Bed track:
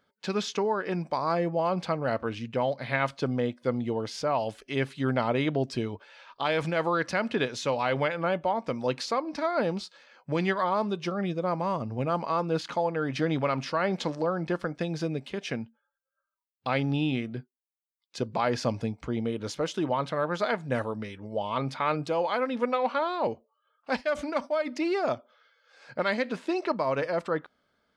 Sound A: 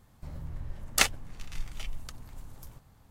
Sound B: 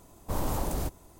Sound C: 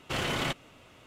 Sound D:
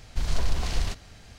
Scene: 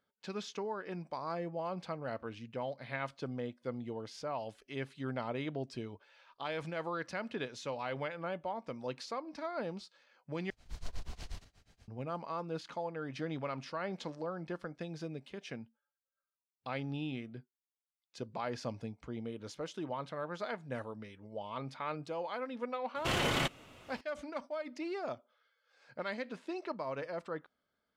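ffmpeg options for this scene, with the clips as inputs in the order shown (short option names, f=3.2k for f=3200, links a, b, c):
-filter_complex "[0:a]volume=-11.5dB[a];[4:a]tremolo=f=8.3:d=0.94[b];[a]asplit=2[c][d];[c]atrim=end=10.504[e];[b]atrim=end=1.38,asetpts=PTS-STARTPTS,volume=-13dB[f];[d]atrim=start=11.876[g];[3:a]atrim=end=1.06,asetpts=PTS-STARTPTS,volume=-1dB,afade=t=in:d=0.004:c=hsin,afade=t=out:st=1.056:d=0.004:c=hsin,adelay=22950[h];[e][f]acrossfade=d=0.004:c1=hsin:c2=hsin[i];[i][g]acrossfade=d=0.004:c1=hsin:c2=hsin[j];[j][h]amix=inputs=2:normalize=0"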